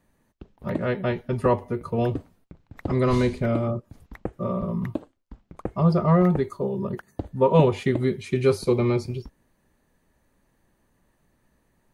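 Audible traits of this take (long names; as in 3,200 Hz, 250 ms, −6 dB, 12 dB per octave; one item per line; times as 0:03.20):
background noise floor −68 dBFS
spectral slope −7.0 dB per octave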